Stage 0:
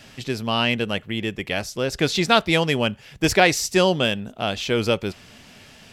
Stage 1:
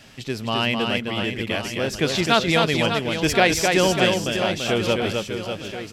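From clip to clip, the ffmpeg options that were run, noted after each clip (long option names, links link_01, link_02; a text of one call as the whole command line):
ffmpeg -i in.wav -af "aecho=1:1:260|598|1037|1609|2351:0.631|0.398|0.251|0.158|0.1,volume=-1.5dB" out.wav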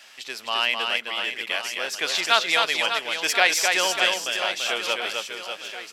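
ffmpeg -i in.wav -af "highpass=910,volume=1.5dB" out.wav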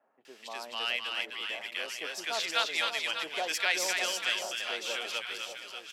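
ffmpeg -i in.wav -filter_complex "[0:a]acrossover=split=150|1000[link_01][link_02][link_03];[link_03]adelay=250[link_04];[link_01]adelay=410[link_05];[link_05][link_02][link_04]amix=inputs=3:normalize=0,volume=-8.5dB" out.wav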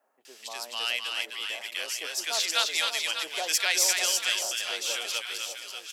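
ffmpeg -i in.wav -af "bass=frequency=250:gain=-8,treble=frequency=4000:gain=12" out.wav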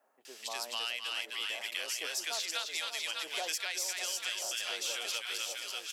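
ffmpeg -i in.wav -af "acompressor=threshold=-32dB:ratio=10" out.wav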